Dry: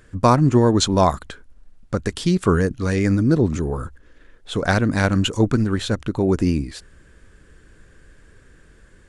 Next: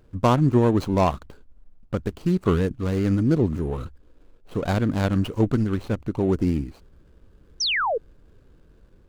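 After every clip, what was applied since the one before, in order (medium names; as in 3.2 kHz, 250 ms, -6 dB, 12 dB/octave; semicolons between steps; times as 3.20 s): median filter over 25 samples; painted sound fall, 7.60–7.98 s, 410–6200 Hz -20 dBFS; trim -3 dB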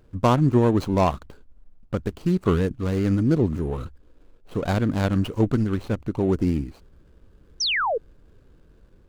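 no audible change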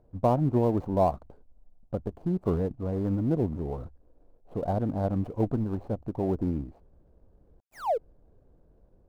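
dead-time distortion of 0.19 ms; FFT filter 390 Hz 0 dB, 710 Hz +8 dB, 1.3 kHz -8 dB, 3.1 kHz -16 dB; trim -6.5 dB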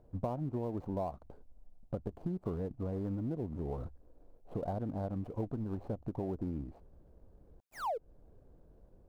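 compression 6:1, threshold -34 dBFS, peak gain reduction 14.5 dB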